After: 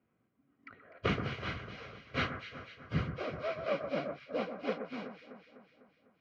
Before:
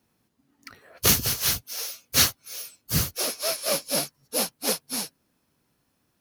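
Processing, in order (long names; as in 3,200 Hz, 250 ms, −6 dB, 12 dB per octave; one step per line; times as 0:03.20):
low-pass filter 2,500 Hz 24 dB per octave
notch comb filter 880 Hz
delay that swaps between a low-pass and a high-pass 125 ms, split 1,800 Hz, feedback 73%, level −8 dB
level −4.5 dB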